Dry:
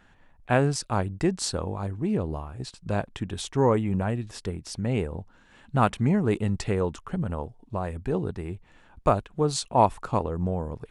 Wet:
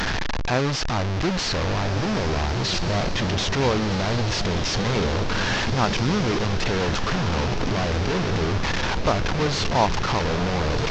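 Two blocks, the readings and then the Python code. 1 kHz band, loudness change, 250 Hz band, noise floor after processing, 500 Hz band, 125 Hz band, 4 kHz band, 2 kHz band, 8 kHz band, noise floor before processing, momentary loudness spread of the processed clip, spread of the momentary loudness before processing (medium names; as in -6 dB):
+3.0 dB, +4.0 dB, +2.5 dB, -25 dBFS, +2.5 dB, +4.0 dB, +13.0 dB, +12.0 dB, +4.5 dB, -57 dBFS, 3 LU, 12 LU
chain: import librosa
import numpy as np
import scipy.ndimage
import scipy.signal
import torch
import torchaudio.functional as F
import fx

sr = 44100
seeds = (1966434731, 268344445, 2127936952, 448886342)

y = fx.delta_mod(x, sr, bps=32000, step_db=-17.0)
y = fx.echo_diffused(y, sr, ms=1441, feedback_pct=52, wet_db=-7.0)
y = y * librosa.db_to_amplitude(-1.0)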